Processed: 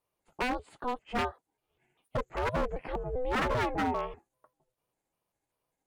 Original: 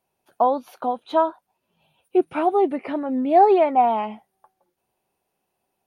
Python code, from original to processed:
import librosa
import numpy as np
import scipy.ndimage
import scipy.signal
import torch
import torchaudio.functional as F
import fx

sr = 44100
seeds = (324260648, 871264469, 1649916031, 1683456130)

y = fx.pitch_trill(x, sr, semitones=-5.5, every_ms=197)
y = y * np.sin(2.0 * np.pi * 250.0 * np.arange(len(y)) / sr)
y = 10.0 ** (-18.0 / 20.0) * (np.abs((y / 10.0 ** (-18.0 / 20.0) + 3.0) % 4.0 - 2.0) - 1.0)
y = y * 10.0 ** (-5.0 / 20.0)